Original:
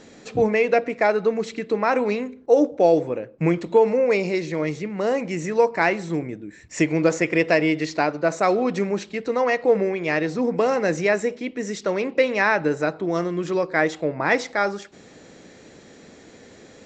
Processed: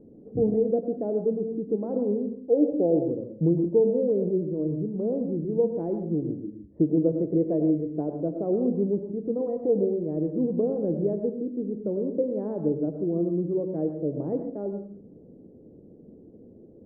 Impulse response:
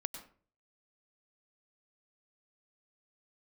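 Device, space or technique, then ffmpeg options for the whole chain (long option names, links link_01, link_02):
next room: -filter_complex "[0:a]lowpass=frequency=450:width=0.5412,lowpass=frequency=450:width=1.3066[link_01];[1:a]atrim=start_sample=2205[link_02];[link_01][link_02]afir=irnorm=-1:irlink=0,asettb=1/sr,asplit=3[link_03][link_04][link_05];[link_03]atrim=end=7.404[link_06];[link_04]atrim=start=7.4:end=8.18,asetpts=PTS-STARTPTS,afade=type=in:duration=0.004:curve=qsin,afade=type=out:start_time=0.776:duration=0.004:curve=qsin,highshelf=frequency=3300:gain=10.5[link_07];[link_05]atrim=start=8.176[link_08];[link_06][link_07]acrossfade=duration=0.004:curve1=hsin:curve2=qsin[link_09];[link_09][link_08]acrossfade=duration=0.004:curve1=qsin:curve2=hsin"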